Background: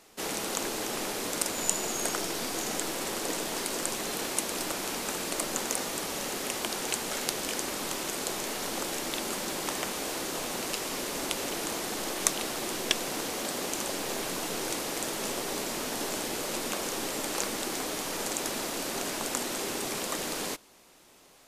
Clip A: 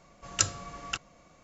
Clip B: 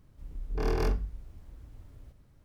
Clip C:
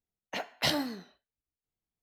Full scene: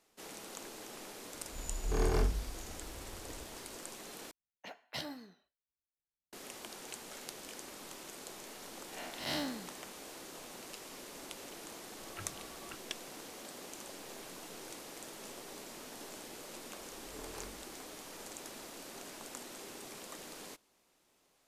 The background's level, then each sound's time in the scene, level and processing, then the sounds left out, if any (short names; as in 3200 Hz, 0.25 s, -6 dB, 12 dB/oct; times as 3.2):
background -15 dB
1.34 add B -2 dB + Doppler distortion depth 0.21 ms
4.31 replace with C -13 dB
8.64 add C -3.5 dB + time blur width 0.151 s
11.78 add A -14 dB + steep low-pass 2600 Hz
16.56 add B -16.5 dB + low shelf 140 Hz -11.5 dB